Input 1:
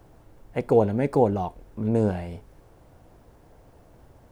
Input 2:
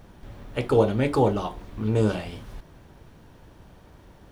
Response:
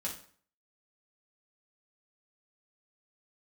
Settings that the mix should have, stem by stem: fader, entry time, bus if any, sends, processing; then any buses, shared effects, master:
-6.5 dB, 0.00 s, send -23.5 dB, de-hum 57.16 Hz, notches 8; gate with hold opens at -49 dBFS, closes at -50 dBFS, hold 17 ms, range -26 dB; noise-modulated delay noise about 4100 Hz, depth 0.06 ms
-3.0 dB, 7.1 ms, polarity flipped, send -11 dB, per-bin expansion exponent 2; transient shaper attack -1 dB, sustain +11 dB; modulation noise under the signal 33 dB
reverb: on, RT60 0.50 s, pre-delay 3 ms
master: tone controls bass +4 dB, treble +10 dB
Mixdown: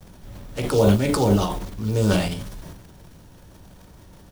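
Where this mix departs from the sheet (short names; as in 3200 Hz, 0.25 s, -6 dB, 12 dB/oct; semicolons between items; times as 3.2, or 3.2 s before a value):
stem 1 -6.5 dB -> -12.5 dB; stem 2: missing per-bin expansion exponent 2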